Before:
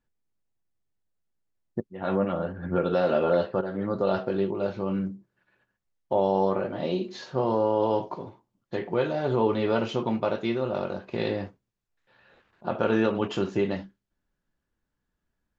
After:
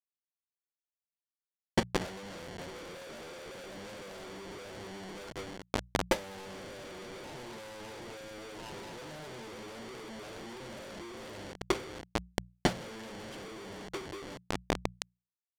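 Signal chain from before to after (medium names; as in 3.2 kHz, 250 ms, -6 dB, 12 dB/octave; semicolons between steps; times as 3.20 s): high-pass 83 Hz 24 dB/octave; repeats whose band climbs or falls 564 ms, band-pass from 420 Hz, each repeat 1.4 oct, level -2 dB; reverberation, pre-delay 9 ms, DRR 10 dB; Schmitt trigger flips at -35.5 dBFS; distance through air 110 m; comb of notches 1.2 kHz; transient shaper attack +8 dB, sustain +2 dB; power-law waveshaper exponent 3; treble shelf 2.7 kHz +8.5 dB; hum notches 60/120/180 Hz; trim +2.5 dB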